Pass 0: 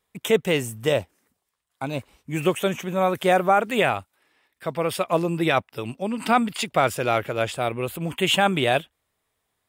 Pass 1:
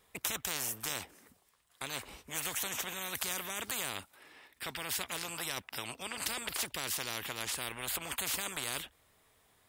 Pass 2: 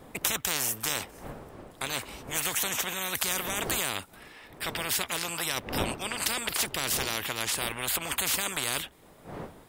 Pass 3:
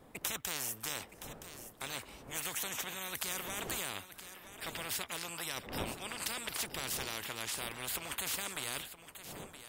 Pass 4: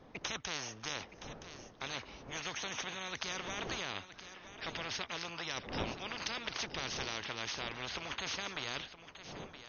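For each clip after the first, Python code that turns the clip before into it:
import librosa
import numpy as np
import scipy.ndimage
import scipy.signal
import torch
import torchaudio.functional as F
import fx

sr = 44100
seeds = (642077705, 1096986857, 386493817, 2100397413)

y1 = fx.spectral_comp(x, sr, ratio=10.0)
y1 = y1 * librosa.db_to_amplitude(-2.5)
y2 = fx.dmg_wind(y1, sr, seeds[0], corner_hz=630.0, level_db=-51.0)
y2 = y2 * librosa.db_to_amplitude(7.0)
y3 = y2 + 10.0 ** (-12.5 / 20.0) * np.pad(y2, (int(969 * sr / 1000.0), 0))[:len(y2)]
y3 = y3 * librosa.db_to_amplitude(-9.0)
y4 = fx.brickwall_lowpass(y3, sr, high_hz=6600.0)
y4 = y4 * librosa.db_to_amplitude(1.0)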